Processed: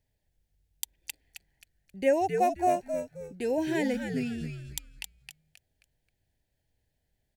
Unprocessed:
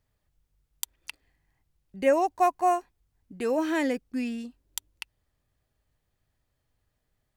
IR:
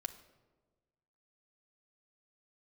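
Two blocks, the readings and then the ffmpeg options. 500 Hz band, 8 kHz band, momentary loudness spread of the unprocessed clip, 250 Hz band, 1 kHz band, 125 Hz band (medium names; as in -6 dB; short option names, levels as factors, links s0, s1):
-1.0 dB, -1.0 dB, 21 LU, -1.0 dB, -3.0 dB, no reading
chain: -filter_complex "[0:a]asuperstop=centerf=1200:order=4:qfactor=1.7,asplit=5[s0][s1][s2][s3][s4];[s1]adelay=266,afreqshift=-97,volume=0.473[s5];[s2]adelay=532,afreqshift=-194,volume=0.146[s6];[s3]adelay=798,afreqshift=-291,volume=0.0457[s7];[s4]adelay=1064,afreqshift=-388,volume=0.0141[s8];[s0][s5][s6][s7][s8]amix=inputs=5:normalize=0,volume=0.794"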